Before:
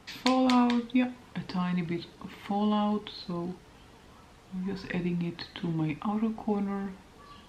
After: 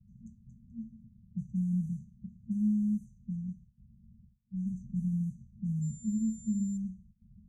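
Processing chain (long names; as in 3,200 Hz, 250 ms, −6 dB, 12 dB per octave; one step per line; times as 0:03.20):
noise gate with hold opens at −43 dBFS
brick-wall band-stop 230–5,900 Hz
low-pass that shuts in the quiet parts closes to 630 Hz, open at −29 dBFS
0:05.81–0:06.76: steady tone 7,200 Hz −51 dBFS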